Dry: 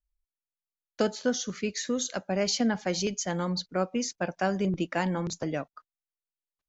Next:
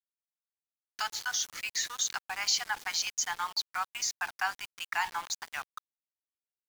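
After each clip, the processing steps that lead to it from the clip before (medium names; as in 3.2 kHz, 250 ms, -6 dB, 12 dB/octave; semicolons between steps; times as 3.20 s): steep high-pass 810 Hz 72 dB/octave; in parallel at -3 dB: peak limiter -28.5 dBFS, peak gain reduction 11 dB; on the sum: small samples zeroed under -39 dBFS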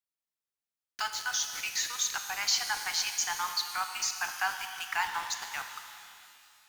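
pitch-shifted reverb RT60 2.5 s, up +12 st, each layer -8 dB, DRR 6 dB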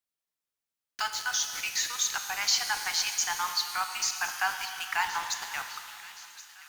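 feedback echo behind a high-pass 1072 ms, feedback 55%, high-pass 1.8 kHz, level -16 dB; trim +2 dB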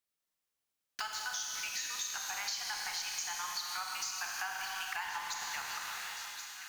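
Schroeder reverb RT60 2.3 s, combs from 30 ms, DRR 2 dB; compression 6:1, threshold -36 dBFS, peak gain reduction 14.5 dB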